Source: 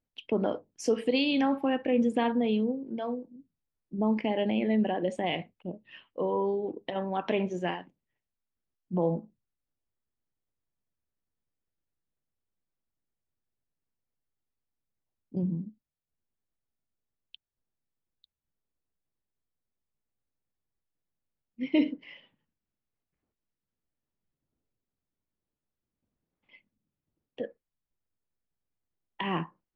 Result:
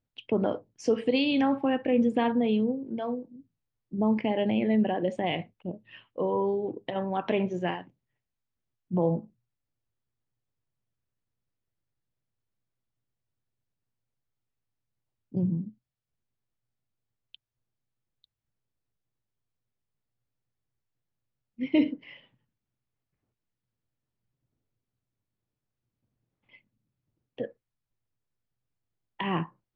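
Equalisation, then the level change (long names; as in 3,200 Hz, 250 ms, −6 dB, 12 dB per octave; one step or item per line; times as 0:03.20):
high-frequency loss of the air 88 metres
parametric band 120 Hz +13.5 dB 0.33 octaves
+1.5 dB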